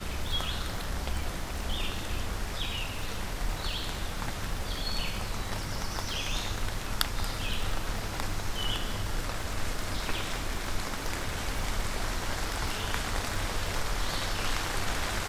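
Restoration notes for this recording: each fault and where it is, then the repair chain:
surface crackle 46 per second −35 dBFS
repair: click removal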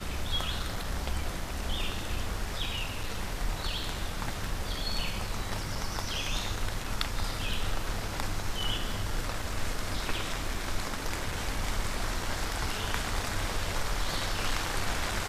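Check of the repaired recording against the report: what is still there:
none of them is left

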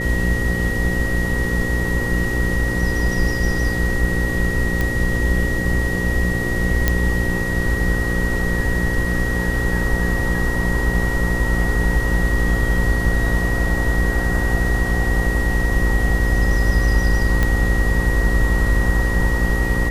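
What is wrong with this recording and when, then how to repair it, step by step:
mains buzz 60 Hz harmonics 9 −23 dBFS
whistle 1,900 Hz −24 dBFS
0:04.81: click −8 dBFS
0:06.88: click −2 dBFS
0:17.43: click −6 dBFS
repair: click removal
notch filter 1,900 Hz, Q 30
hum removal 60 Hz, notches 9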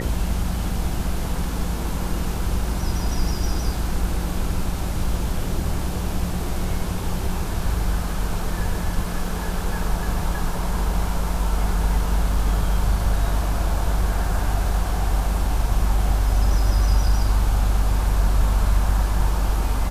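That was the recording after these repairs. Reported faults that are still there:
none of them is left

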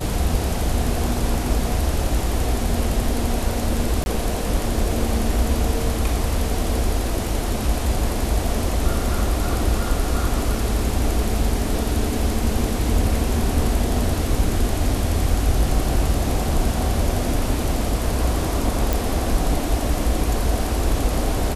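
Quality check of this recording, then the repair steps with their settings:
0:04.04–0:04.06: drop-out 21 ms
0:18.93: click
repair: click removal
repair the gap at 0:04.04, 21 ms

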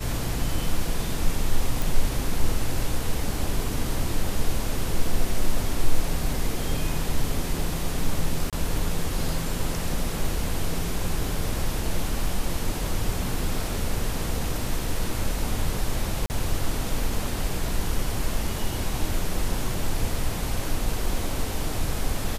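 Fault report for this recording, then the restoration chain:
0:01.82: click
0:08.50–0:08.53: drop-out 27 ms
0:16.26–0:16.30: drop-out 39 ms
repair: click removal
repair the gap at 0:08.50, 27 ms
repair the gap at 0:16.26, 39 ms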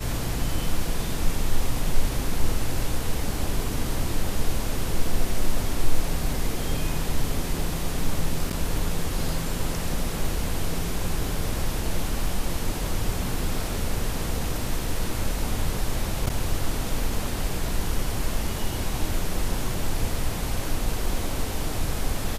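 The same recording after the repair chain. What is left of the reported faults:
none of them is left

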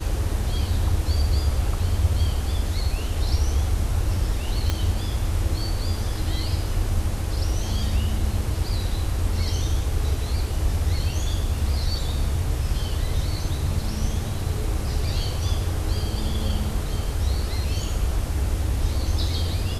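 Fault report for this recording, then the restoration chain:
0:04.70: click −10 dBFS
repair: click removal

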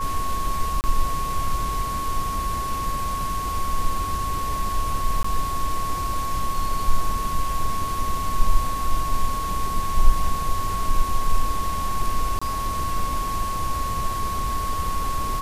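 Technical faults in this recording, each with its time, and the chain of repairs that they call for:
whistle 1,100 Hz −26 dBFS
0:00.81–0:00.84: drop-out 29 ms
0:05.23–0:05.24: drop-out 14 ms
0:12.39–0:12.41: drop-out 25 ms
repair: notch filter 1,100 Hz, Q 30
repair the gap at 0:00.81, 29 ms
repair the gap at 0:05.23, 14 ms
repair the gap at 0:12.39, 25 ms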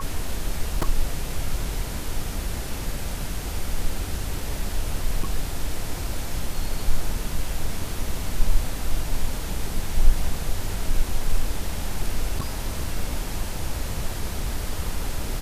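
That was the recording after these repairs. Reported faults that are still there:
none of them is left

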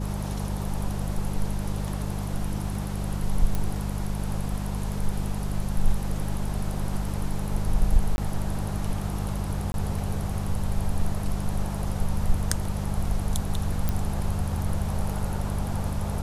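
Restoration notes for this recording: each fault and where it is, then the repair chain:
mains hum 50 Hz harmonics 4 −30 dBFS
0:03.55: click
0:08.16–0:08.18: drop-out 21 ms
0:09.72–0:09.74: drop-out 21 ms
0:13.89: click −12 dBFS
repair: click removal
hum removal 50 Hz, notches 4
repair the gap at 0:08.16, 21 ms
repair the gap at 0:09.72, 21 ms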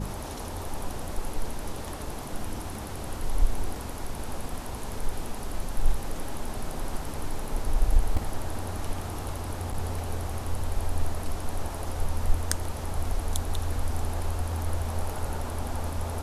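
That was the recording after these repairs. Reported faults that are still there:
none of them is left

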